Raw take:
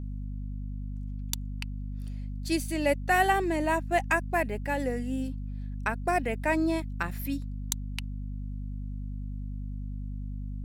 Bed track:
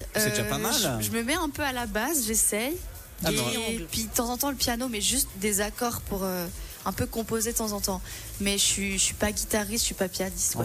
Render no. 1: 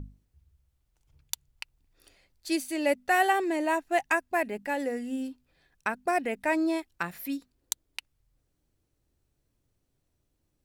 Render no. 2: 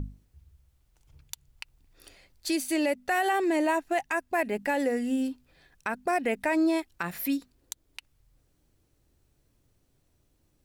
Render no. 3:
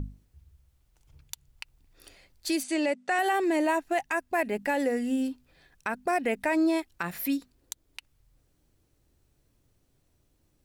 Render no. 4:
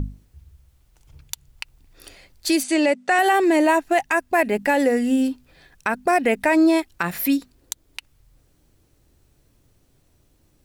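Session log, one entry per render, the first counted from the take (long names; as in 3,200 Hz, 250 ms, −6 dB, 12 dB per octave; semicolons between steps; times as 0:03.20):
mains-hum notches 50/100/150/200/250 Hz
in parallel at +1.5 dB: downward compressor, threshold −33 dBFS, peak gain reduction 13.5 dB; on the sum: brickwall limiter −17.5 dBFS, peak gain reduction 11.5 dB
0:02.63–0:03.19: elliptic band-pass filter 160–8,500 Hz
level +8.5 dB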